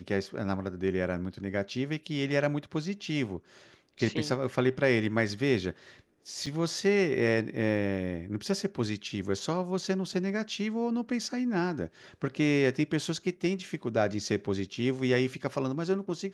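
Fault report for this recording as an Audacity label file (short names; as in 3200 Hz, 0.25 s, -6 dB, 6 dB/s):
6.460000	6.460000	gap 4.6 ms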